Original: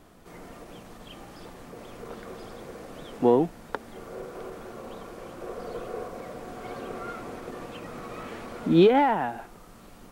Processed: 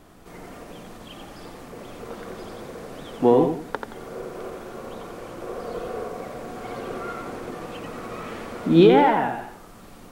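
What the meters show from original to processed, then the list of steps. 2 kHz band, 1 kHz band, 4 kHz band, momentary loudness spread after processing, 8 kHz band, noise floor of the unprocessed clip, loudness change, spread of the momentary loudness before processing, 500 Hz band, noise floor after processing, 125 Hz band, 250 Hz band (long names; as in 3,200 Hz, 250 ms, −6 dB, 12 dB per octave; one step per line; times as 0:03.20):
+4.5 dB, +4.0 dB, +4.5 dB, 23 LU, +4.0 dB, −49 dBFS, +4.0 dB, 23 LU, +4.0 dB, −45 dBFS, +4.5 dB, +4.0 dB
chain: feedback echo with a swinging delay time 88 ms, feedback 33%, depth 71 cents, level −5.5 dB
level +3 dB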